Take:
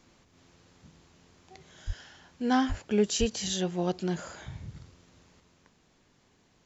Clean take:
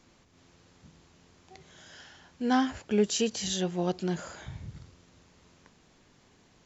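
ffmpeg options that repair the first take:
ffmpeg -i in.wav -filter_complex "[0:a]asplit=3[link_01][link_02][link_03];[link_01]afade=type=out:start_time=1.86:duration=0.02[link_04];[link_02]highpass=frequency=140:width=0.5412,highpass=frequency=140:width=1.3066,afade=type=in:start_time=1.86:duration=0.02,afade=type=out:start_time=1.98:duration=0.02[link_05];[link_03]afade=type=in:start_time=1.98:duration=0.02[link_06];[link_04][link_05][link_06]amix=inputs=3:normalize=0,asplit=3[link_07][link_08][link_09];[link_07]afade=type=out:start_time=2.68:duration=0.02[link_10];[link_08]highpass=frequency=140:width=0.5412,highpass=frequency=140:width=1.3066,afade=type=in:start_time=2.68:duration=0.02,afade=type=out:start_time=2.8:duration=0.02[link_11];[link_09]afade=type=in:start_time=2.8:duration=0.02[link_12];[link_10][link_11][link_12]amix=inputs=3:normalize=0,asplit=3[link_13][link_14][link_15];[link_13]afade=type=out:start_time=3.19:duration=0.02[link_16];[link_14]highpass=frequency=140:width=0.5412,highpass=frequency=140:width=1.3066,afade=type=in:start_time=3.19:duration=0.02,afade=type=out:start_time=3.31:duration=0.02[link_17];[link_15]afade=type=in:start_time=3.31:duration=0.02[link_18];[link_16][link_17][link_18]amix=inputs=3:normalize=0,asetnsamples=nb_out_samples=441:pad=0,asendcmd='5.4 volume volume 4dB',volume=0dB" out.wav

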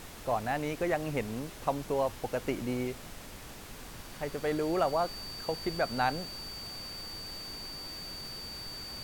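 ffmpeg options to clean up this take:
ffmpeg -i in.wav -af "bandreject=frequency=4600:width=30,afftdn=noise_reduction=30:noise_floor=-46" out.wav

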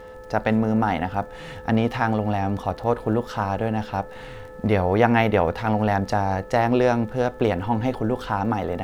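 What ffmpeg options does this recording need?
ffmpeg -i in.wav -af "adeclick=threshold=4,bandreject=frequency=434.6:width_type=h:width=4,bandreject=frequency=869.2:width_type=h:width=4,bandreject=frequency=1303.8:width_type=h:width=4,bandreject=frequency=1738.4:width_type=h:width=4,bandreject=frequency=510:width=30" out.wav

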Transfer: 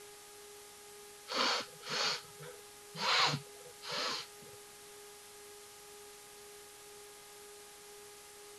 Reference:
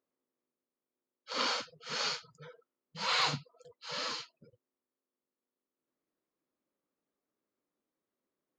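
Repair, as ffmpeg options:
ffmpeg -i in.wav -af "bandreject=frequency=412:width_type=h:width=4,bandreject=frequency=824:width_type=h:width=4,bandreject=frequency=1236:width_type=h:width=4,bandreject=frequency=1648:width_type=h:width=4,bandreject=frequency=2060:width_type=h:width=4,bandreject=frequency=410:width=30,afwtdn=0.0022,asetnsamples=nb_out_samples=441:pad=0,asendcmd='4.49 volume volume -5dB',volume=0dB" out.wav

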